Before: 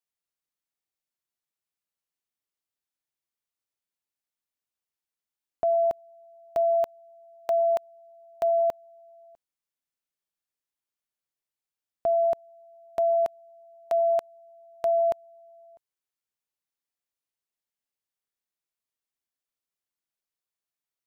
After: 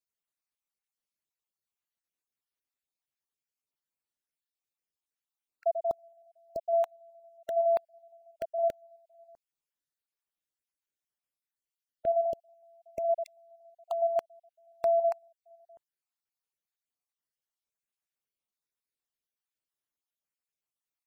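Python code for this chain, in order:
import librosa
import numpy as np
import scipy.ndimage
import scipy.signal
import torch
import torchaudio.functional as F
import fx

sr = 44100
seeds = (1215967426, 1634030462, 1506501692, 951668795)

y = fx.spec_dropout(x, sr, seeds[0], share_pct=42)
y = F.gain(torch.from_numpy(y), -1.5).numpy()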